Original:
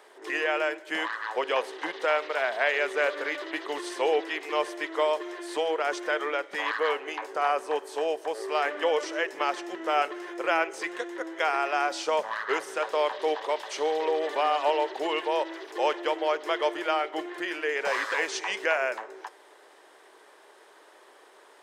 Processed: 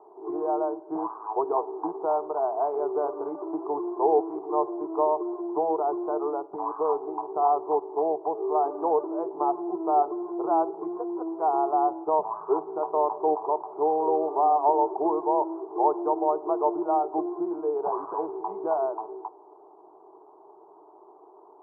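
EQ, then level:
Butterworth low-pass 1,000 Hz 36 dB per octave
high-frequency loss of the air 380 metres
phaser with its sweep stopped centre 360 Hz, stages 8
+8.5 dB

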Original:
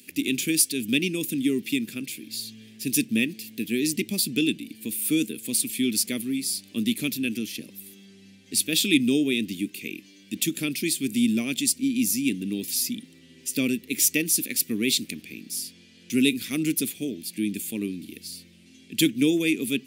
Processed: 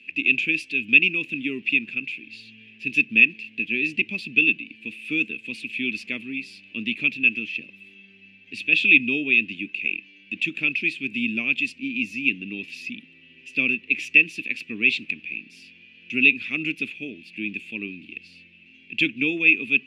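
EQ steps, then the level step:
dynamic equaliser 1,000 Hz, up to +6 dB, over −45 dBFS, Q 1.4
low-pass with resonance 2,600 Hz, resonance Q 13
−6.5 dB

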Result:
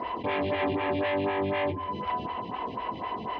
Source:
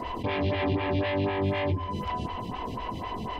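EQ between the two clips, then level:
high-pass filter 470 Hz 6 dB per octave
high-frequency loss of the air 310 metres
+4.5 dB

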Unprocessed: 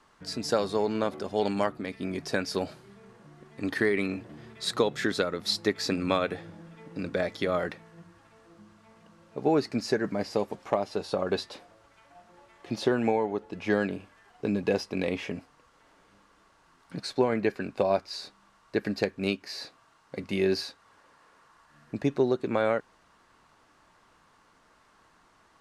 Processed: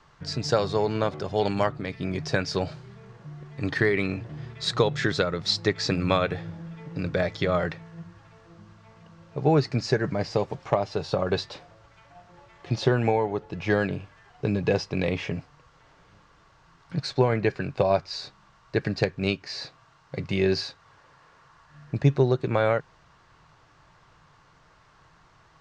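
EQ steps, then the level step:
low-pass filter 6,800 Hz 24 dB per octave
low shelf with overshoot 180 Hz +6 dB, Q 3
+3.5 dB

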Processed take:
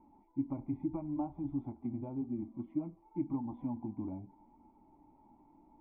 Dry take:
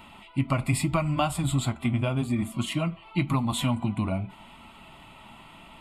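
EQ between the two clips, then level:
formant resonators in series u
parametric band 160 Hz −8 dB 1.7 octaves
notch filter 670 Hz, Q 18
+1.5 dB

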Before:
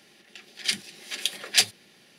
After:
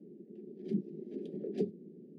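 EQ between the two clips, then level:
elliptic band-pass filter 160–420 Hz, stop band 50 dB
+12.0 dB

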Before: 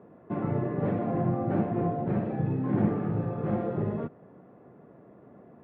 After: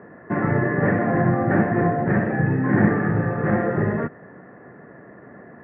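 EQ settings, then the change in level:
low-pass with resonance 1,800 Hz, resonance Q 8.9
+7.5 dB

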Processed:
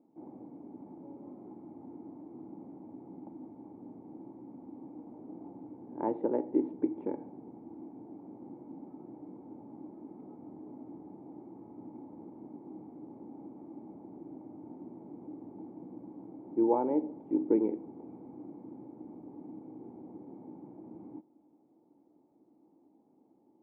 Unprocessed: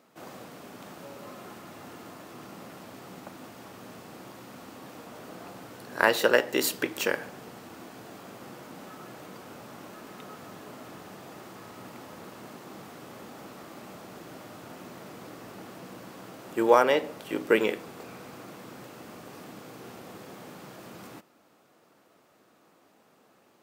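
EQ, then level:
formant resonators in series u
+6.0 dB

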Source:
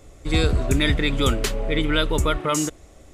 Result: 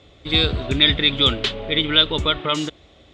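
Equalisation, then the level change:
high-pass filter 66 Hz 12 dB per octave
low-pass with resonance 3,500 Hz, resonance Q 4.7
−1.0 dB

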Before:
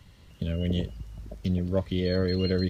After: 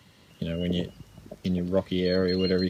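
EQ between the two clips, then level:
high-pass filter 160 Hz 12 dB per octave
+3.0 dB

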